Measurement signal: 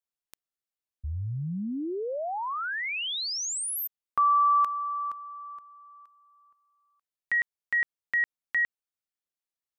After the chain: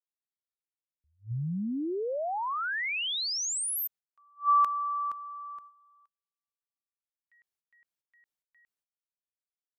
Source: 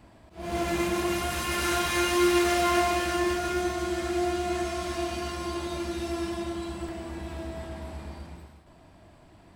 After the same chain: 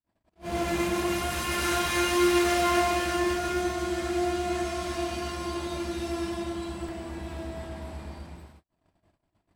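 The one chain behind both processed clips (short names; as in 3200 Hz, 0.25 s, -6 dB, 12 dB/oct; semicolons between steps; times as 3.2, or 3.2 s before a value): gate -50 dBFS, range -43 dB; attack slew limiter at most 300 dB/s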